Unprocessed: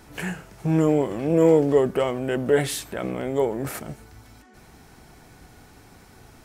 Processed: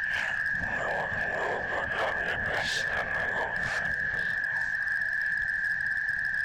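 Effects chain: spectral swells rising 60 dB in 0.40 s; whine 1700 Hz -27 dBFS; LPF 5500 Hz 24 dB/oct; in parallel at 0 dB: compressor 10:1, threshold -26 dBFS, peak gain reduction 14.5 dB; on the sum: Chebyshev band-stop 110–660 Hz, order 3; whisperiser; delay with a stepping band-pass 0.383 s, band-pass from 150 Hz, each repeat 1.4 oct, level -5 dB; hard clip -18.5 dBFS, distortion -22 dB; gain -4.5 dB

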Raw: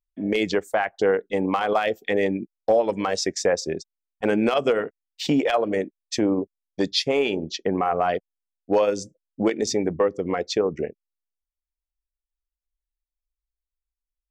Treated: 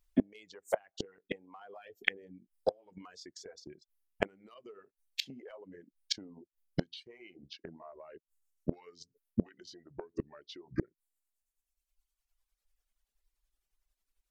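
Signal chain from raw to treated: gliding pitch shift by -4.5 st starting unshifted; in parallel at -2 dB: limiter -19 dBFS, peak gain reduction 8.5 dB; on the sum: compressor 10:1, threshold -22 dBFS, peak gain reduction 9.5 dB; flipped gate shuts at -21 dBFS, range -29 dB; reverb removal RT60 1.8 s; gain +6.5 dB

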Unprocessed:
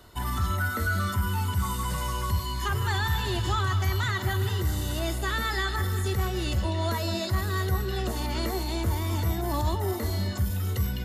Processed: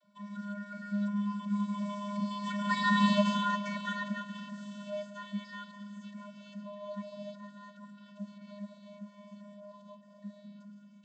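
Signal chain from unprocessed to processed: Doppler pass-by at 3.08, 22 m/s, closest 6.2 m; vocoder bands 32, square 204 Hz; gain +6 dB

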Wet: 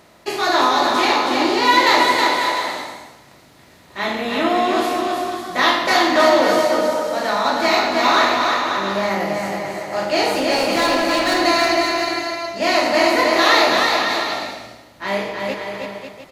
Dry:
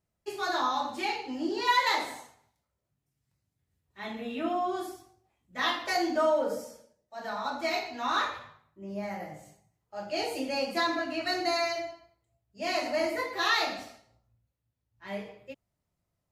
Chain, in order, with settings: per-bin compression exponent 0.6; 10.31–11.41 overloaded stage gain 24.5 dB; bouncing-ball echo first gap 0.32 s, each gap 0.7×, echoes 5; gain +8.5 dB

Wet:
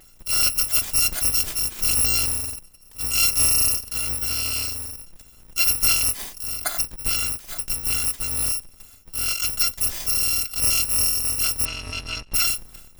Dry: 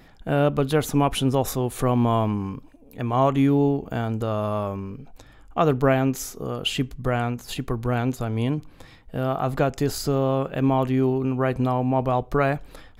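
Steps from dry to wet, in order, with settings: FFT order left unsorted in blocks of 256 samples; 11.65–12.34 LPF 3400 Hz 12 dB/oct

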